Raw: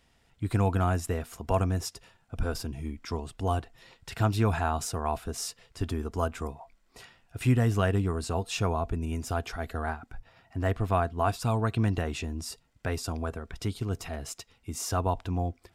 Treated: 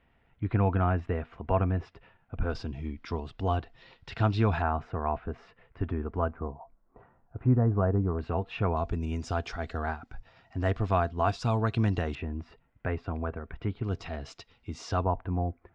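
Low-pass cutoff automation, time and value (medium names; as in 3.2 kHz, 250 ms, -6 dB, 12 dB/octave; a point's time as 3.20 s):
low-pass 24 dB/octave
2.6 kHz
from 2.50 s 4.4 kHz
from 4.62 s 2.2 kHz
from 6.31 s 1.2 kHz
from 8.19 s 2.6 kHz
from 8.77 s 5.9 kHz
from 12.15 s 2.4 kHz
from 13.84 s 4.7 kHz
from 15.04 s 1.9 kHz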